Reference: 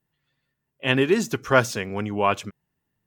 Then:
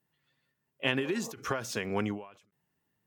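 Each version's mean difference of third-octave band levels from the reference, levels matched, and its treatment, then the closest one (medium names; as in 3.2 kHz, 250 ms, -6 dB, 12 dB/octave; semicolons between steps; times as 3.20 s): 7.0 dB: high-pass 150 Hz 6 dB/octave; spectral replace 1.03–1.33 s, 450–1200 Hz both; compression 6:1, threshold -24 dBFS, peak gain reduction 12.5 dB; endings held to a fixed fall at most 110 dB/s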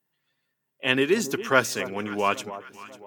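5.0 dB: Bessel high-pass 250 Hz, order 2; treble shelf 7.9 kHz +4.5 dB; on a send: echo whose repeats swap between lows and highs 273 ms, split 1.1 kHz, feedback 64%, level -13.5 dB; on the sum: dynamic bell 730 Hz, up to -5 dB, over -33 dBFS, Q 1.7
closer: second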